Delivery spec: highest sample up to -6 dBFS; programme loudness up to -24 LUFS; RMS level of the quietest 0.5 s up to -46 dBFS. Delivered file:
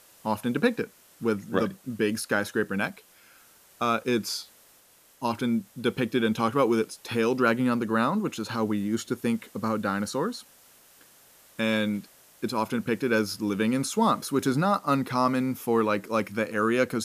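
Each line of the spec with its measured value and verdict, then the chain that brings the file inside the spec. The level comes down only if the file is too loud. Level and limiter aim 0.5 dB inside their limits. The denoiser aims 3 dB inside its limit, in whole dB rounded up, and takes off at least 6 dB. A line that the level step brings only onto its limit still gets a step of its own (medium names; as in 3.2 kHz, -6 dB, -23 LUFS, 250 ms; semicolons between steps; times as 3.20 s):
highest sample -9.0 dBFS: pass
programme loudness -27.0 LUFS: pass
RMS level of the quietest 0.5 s -58 dBFS: pass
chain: none needed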